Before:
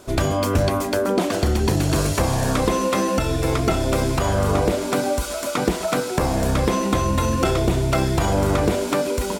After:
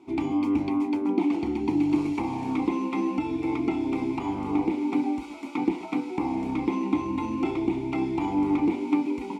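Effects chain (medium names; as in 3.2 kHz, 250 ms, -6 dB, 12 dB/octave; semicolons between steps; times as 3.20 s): vowel filter u; band-stop 1 kHz, Q 26; trim +5.5 dB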